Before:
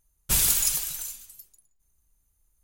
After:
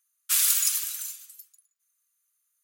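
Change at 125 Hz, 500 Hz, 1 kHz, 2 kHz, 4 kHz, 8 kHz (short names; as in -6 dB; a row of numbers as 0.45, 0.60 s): under -40 dB, under -40 dB, -4.0 dB, 0.0 dB, 0.0 dB, 0.0 dB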